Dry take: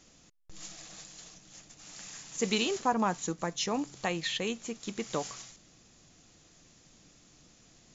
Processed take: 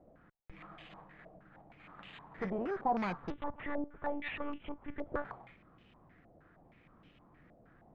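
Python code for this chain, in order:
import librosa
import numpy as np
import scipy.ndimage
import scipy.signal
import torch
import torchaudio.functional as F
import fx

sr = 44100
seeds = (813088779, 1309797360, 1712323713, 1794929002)

y = fx.tube_stage(x, sr, drive_db=34.0, bias=0.5)
y = fx.air_absorb(y, sr, metres=240.0)
y = np.repeat(scipy.signal.resample_poly(y, 1, 8), 8)[:len(y)]
y = fx.lpc_monotone(y, sr, seeds[0], pitch_hz=290.0, order=10, at=(3.3, 5.25))
y = fx.filter_held_lowpass(y, sr, hz=6.4, low_hz=650.0, high_hz=2900.0)
y = y * 10.0 ** (1.5 / 20.0)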